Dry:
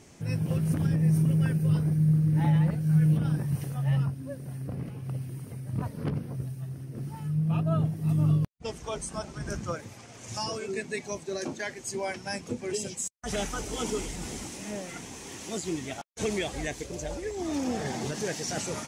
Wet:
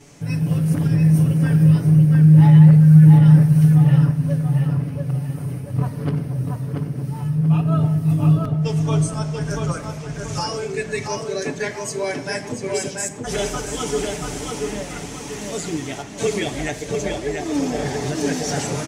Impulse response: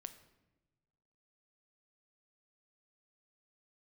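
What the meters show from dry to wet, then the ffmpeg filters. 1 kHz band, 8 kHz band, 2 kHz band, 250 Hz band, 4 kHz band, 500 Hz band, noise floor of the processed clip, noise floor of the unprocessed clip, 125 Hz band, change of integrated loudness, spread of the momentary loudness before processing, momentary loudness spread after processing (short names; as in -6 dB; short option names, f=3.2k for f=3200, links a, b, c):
+8.5 dB, +6.5 dB, +8.0 dB, +11.5 dB, +7.0 dB, +9.0 dB, -33 dBFS, -47 dBFS, +12.0 dB, +11.5 dB, 14 LU, 16 LU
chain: -filter_complex "[0:a]asplit=2[a][b];[b]adelay=685,lowpass=f=3.7k:p=1,volume=-3dB,asplit=2[c][d];[d]adelay=685,lowpass=f=3.7k:p=1,volume=0.4,asplit=2[e][f];[f]adelay=685,lowpass=f=3.7k:p=1,volume=0.4,asplit=2[g][h];[h]adelay=685,lowpass=f=3.7k:p=1,volume=0.4,asplit=2[i][j];[j]adelay=685,lowpass=f=3.7k:p=1,volume=0.4[k];[a][c][e][g][i][k]amix=inputs=6:normalize=0,asplit=2[l][m];[1:a]atrim=start_sample=2205,adelay=7[n];[m][n]afir=irnorm=-1:irlink=0,volume=11.5dB[o];[l][o]amix=inputs=2:normalize=0,volume=-1dB"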